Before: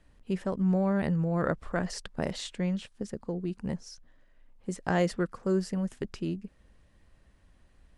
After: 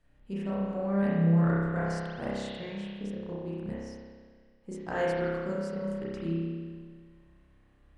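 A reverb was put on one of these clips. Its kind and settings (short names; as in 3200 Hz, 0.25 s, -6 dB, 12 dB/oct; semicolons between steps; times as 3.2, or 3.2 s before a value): spring tank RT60 1.7 s, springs 30 ms, chirp 55 ms, DRR -8.5 dB; gain -9.5 dB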